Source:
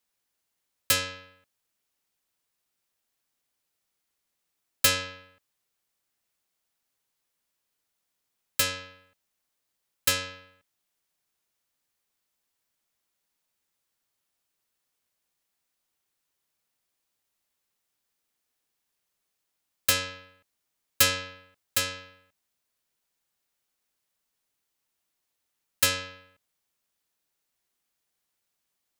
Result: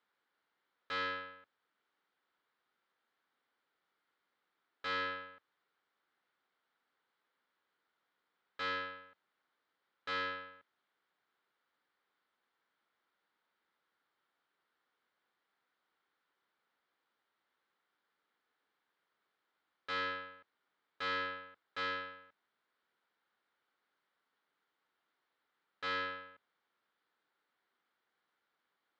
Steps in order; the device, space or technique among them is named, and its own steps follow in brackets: guitar amplifier (valve stage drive 37 dB, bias 0.3; tone controls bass -10 dB, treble -13 dB; cabinet simulation 95–4200 Hz, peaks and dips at 110 Hz -7 dB, 630 Hz -5 dB, 1.4 kHz +5 dB, 2.6 kHz -8 dB); trim +6.5 dB

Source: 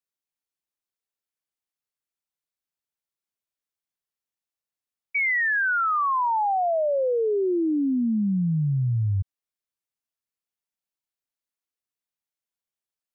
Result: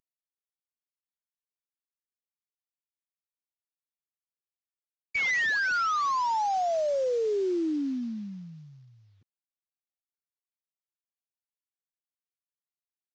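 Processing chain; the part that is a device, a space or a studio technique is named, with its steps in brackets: early wireless headset (high-pass 270 Hz 24 dB/octave; CVSD coder 32 kbps); trim -3.5 dB

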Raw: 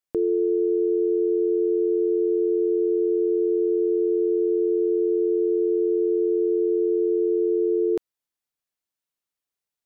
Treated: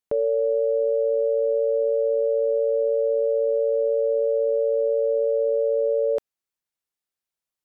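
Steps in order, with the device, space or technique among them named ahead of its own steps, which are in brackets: nightcore (tape speed +29%)

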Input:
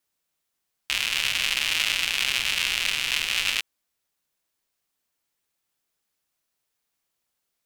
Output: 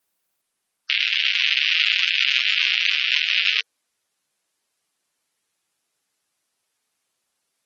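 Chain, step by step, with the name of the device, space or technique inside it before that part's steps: 1.04–2.62 s: high-pass 800 Hz 24 dB/octave; dynamic bell 480 Hz, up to +4 dB, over -53 dBFS, Q 2.4; noise-suppressed video call (high-pass 140 Hz 6 dB/octave; spectral gate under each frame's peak -15 dB strong; trim +6 dB; Opus 24 kbps 48 kHz)

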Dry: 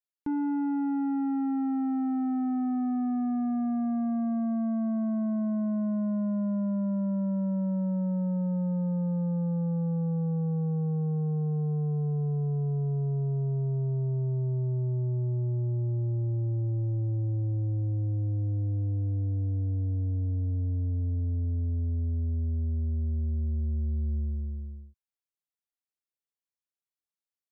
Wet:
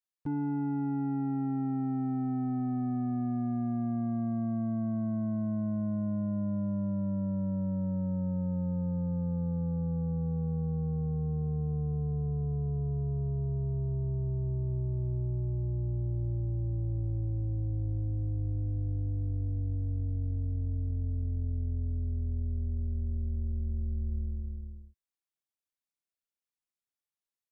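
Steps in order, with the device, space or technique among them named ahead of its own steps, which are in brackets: octave pedal (harmony voices -12 st -6 dB); trim -4 dB

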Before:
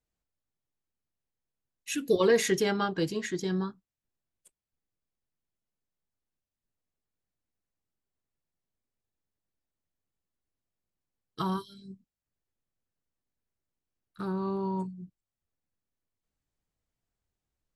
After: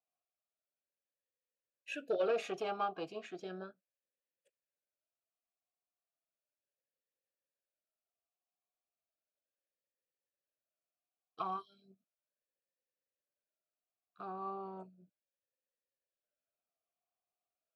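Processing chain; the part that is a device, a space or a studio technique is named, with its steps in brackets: talk box (valve stage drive 19 dB, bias 0.35; talking filter a-e 0.35 Hz); trim +6.5 dB

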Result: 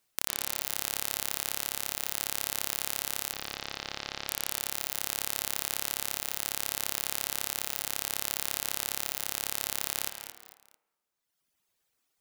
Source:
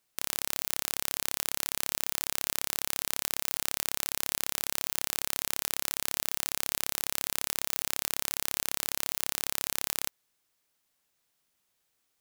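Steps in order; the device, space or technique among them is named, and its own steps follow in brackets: reverb removal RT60 1.7 s; filtered reverb send (on a send at -8 dB: high-pass 210 Hz 24 dB/octave + low-pass 3.5 kHz 12 dB/octave + reverberation RT60 1.3 s, pre-delay 98 ms); 3.33–4.28 s: on the sum: steep low-pass 5.4 kHz 36 dB/octave; bit-crushed delay 223 ms, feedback 35%, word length 6-bit, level -9.5 dB; trim +1.5 dB

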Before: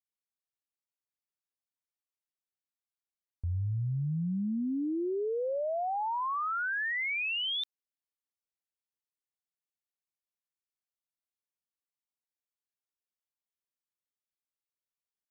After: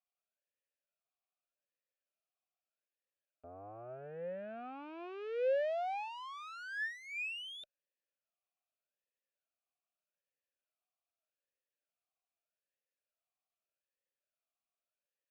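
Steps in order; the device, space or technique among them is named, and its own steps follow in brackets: talk box (valve stage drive 45 dB, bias 0.65; talking filter a-e 0.82 Hz); trim +16.5 dB

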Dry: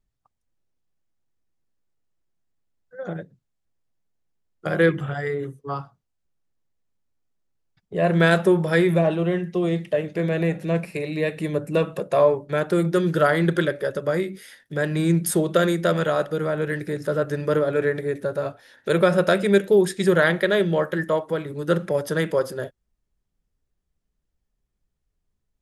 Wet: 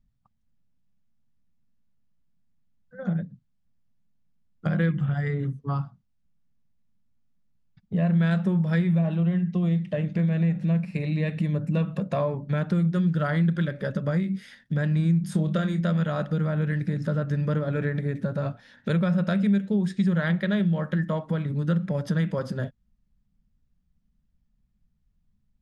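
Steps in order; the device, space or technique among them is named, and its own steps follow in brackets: jukebox (low-pass 5.5 kHz 12 dB/octave; resonant low shelf 280 Hz +8.5 dB, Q 3; compression 3:1, threshold -22 dBFS, peak gain reduction 13 dB); 15.21–15.81 s: doubling 26 ms -8.5 dB; trim -1.5 dB

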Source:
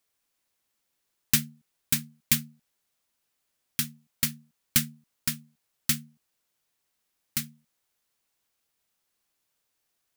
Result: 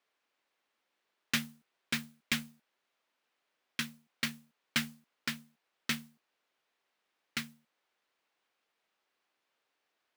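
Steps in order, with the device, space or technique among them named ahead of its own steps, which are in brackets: carbon microphone (band-pass 320–3000 Hz; saturation -24.5 dBFS, distortion -13 dB; modulation noise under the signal 12 dB); trim +4 dB

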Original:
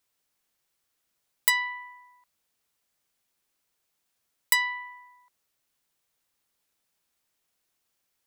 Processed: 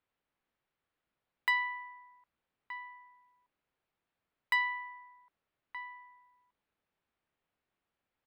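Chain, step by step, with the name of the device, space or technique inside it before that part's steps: shout across a valley (distance through air 430 m; echo from a far wall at 210 m, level -9 dB)

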